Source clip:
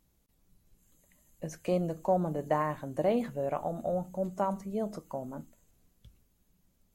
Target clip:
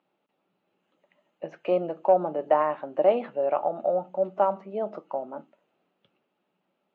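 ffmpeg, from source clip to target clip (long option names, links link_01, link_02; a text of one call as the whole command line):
ffmpeg -i in.wav -af "highpass=frequency=210:width=0.5412,highpass=frequency=210:width=1.3066,equalizer=frequency=240:width_type=q:width=4:gain=-4,equalizer=frequency=370:width_type=q:width=4:gain=5,equalizer=frequency=590:width_type=q:width=4:gain=8,equalizer=frequency=830:width_type=q:width=4:gain=9,equalizer=frequency=1300:width_type=q:width=4:gain=8,equalizer=frequency=2700:width_type=q:width=4:gain=7,lowpass=frequency=3400:width=0.5412,lowpass=frequency=3400:width=1.3066,aeval=exprs='0.398*(cos(1*acos(clip(val(0)/0.398,-1,1)))-cos(1*PI/2))+0.0178*(cos(2*acos(clip(val(0)/0.398,-1,1)))-cos(2*PI/2))+0.00562*(cos(4*acos(clip(val(0)/0.398,-1,1)))-cos(4*PI/2))':channel_layout=same" out.wav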